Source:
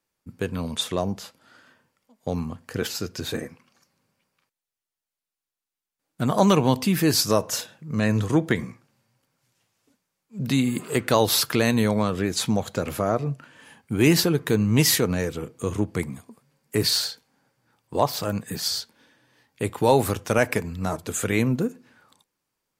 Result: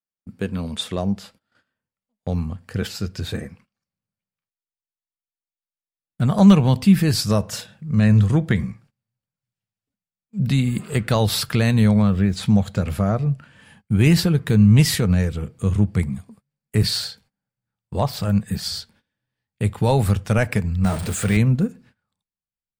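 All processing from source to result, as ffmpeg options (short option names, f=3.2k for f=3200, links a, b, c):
-filter_complex "[0:a]asettb=1/sr,asplit=3[a][b][c];[a]atrim=end=12.024[d];[b]atrim=start=12.02:end=12.43,asetpts=PTS-STARTPTS,afade=t=in:d=0.004:c=qsin,afade=t=out:st=0.406:d=0.004:c=qsin,highshelf=f=4.6k:g=-8.5,acrusher=bits=8:mix=0:aa=0.5[e];[c]atrim=start=12.426[f];[d][e]acrossfade=d=0.004:c1=hsin:c2=qsin[g];[g][f]acrossfade=d=0.004:c1=qsin:c2=hsin,asettb=1/sr,asplit=3[h][i][j];[h]atrim=end=20.844[k];[i]atrim=start=20.84:end=21.37,asetpts=PTS-STARTPTS,afade=t=in:d=0.004:c=qsin,afade=t=out:st=0.526:d=0.004:c=qsin,aeval=exprs='val(0)+0.5*0.0473*sgn(val(0))':c=same,highpass=f=140:p=1,aeval=exprs='val(0)+0.00708*sin(2*PI*8700*n/s)':c=same[l];[j]atrim=start=21.366[m];[k][l]acrossfade=d=0.004:c1=hsin:c2=qsin[n];[n][m]acrossfade=d=0.004:c1=qsin:c2=hsin,asubboost=boost=8:cutoff=96,agate=range=-22dB:threshold=-51dB:ratio=16:detection=peak,equalizer=f=200:t=o:w=0.33:g=10,equalizer=f=1k:t=o:w=0.33:g=-4,equalizer=f=6.3k:t=o:w=0.33:g=-6,equalizer=f=12.5k:t=o:w=0.33:g=-9"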